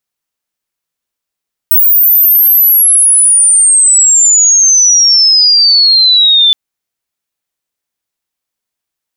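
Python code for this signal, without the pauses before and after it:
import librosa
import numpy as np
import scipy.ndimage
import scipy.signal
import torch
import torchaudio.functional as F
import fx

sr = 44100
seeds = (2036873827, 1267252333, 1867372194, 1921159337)

y = fx.chirp(sr, length_s=4.82, from_hz=16000.0, to_hz=3500.0, law='logarithmic', from_db=-3.5, to_db=-3.5)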